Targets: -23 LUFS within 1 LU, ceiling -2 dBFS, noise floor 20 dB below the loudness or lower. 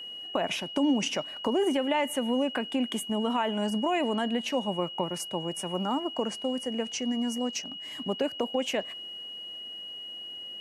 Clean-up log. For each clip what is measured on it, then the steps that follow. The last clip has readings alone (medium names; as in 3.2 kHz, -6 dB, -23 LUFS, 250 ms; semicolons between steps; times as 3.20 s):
steady tone 2.9 kHz; tone level -38 dBFS; loudness -30.0 LUFS; peak level -14.0 dBFS; loudness target -23.0 LUFS
-> band-stop 2.9 kHz, Q 30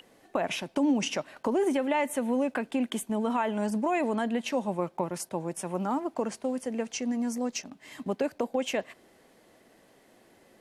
steady tone not found; loudness -30.5 LUFS; peak level -13.5 dBFS; loudness target -23.0 LUFS
-> trim +7.5 dB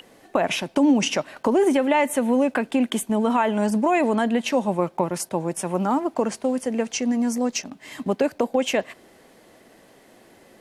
loudness -23.0 LUFS; peak level -6.0 dBFS; noise floor -54 dBFS